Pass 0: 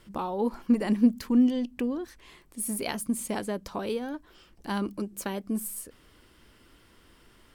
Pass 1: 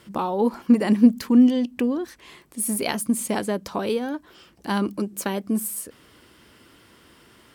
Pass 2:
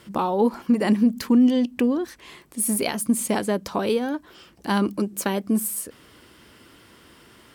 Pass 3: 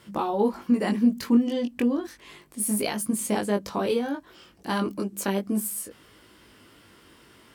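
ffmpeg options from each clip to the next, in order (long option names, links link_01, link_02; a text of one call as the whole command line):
ffmpeg -i in.wav -af "highpass=95,volume=6.5dB" out.wav
ffmpeg -i in.wav -af "alimiter=limit=-12.5dB:level=0:latency=1:release=132,volume=2dB" out.wav
ffmpeg -i in.wav -af "flanger=delay=19:depth=2.8:speed=0.33" out.wav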